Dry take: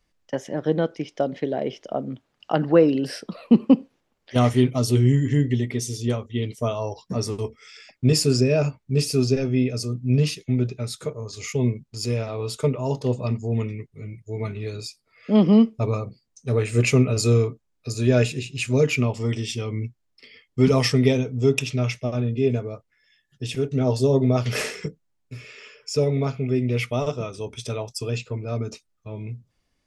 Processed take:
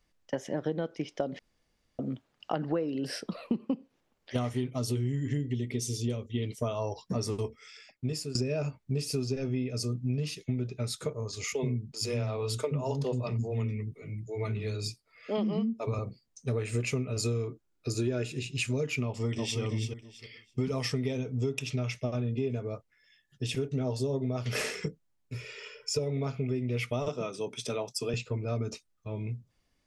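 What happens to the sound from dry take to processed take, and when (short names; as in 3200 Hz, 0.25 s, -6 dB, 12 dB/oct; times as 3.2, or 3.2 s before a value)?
1.39–1.99 room tone
5.37–6.38 band shelf 1100 Hz -8.5 dB
7.39–8.35 fade out, to -19.5 dB
11.44–15.99 bands offset in time highs, lows 80 ms, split 300 Hz
17.47–18.35 small resonant body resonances 340/1400 Hz, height 10 dB
19.05–19.6 echo throw 0.33 s, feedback 20%, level -6.5 dB
25.34–25.99 comb 2.1 ms
27.08–28.14 HPF 150 Hz 24 dB/oct
whole clip: compressor 10:1, threshold -25 dBFS; gain -2 dB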